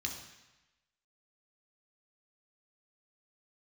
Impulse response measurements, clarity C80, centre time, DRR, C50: 8.5 dB, 31 ms, 0.5 dB, 6.0 dB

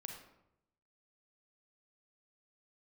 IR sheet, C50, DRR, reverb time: 4.0 dB, 2.0 dB, 0.85 s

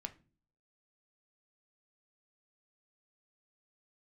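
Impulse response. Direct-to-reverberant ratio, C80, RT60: 6.5 dB, 24.0 dB, non-exponential decay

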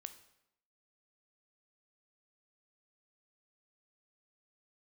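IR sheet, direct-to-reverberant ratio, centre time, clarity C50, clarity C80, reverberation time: 9.5 dB, 7 ms, 12.5 dB, 15.5 dB, 0.80 s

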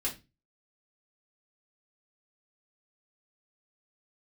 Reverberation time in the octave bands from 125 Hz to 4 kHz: 0.45, 0.35, 0.25, 0.20, 0.25, 0.25 seconds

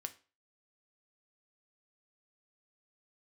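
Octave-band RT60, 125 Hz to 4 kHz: 0.35, 0.35, 0.35, 0.35, 0.35, 0.30 seconds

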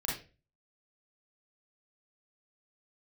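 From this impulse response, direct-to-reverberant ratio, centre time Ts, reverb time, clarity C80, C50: −5.5 dB, 43 ms, 0.35 s, 10.5 dB, 2.5 dB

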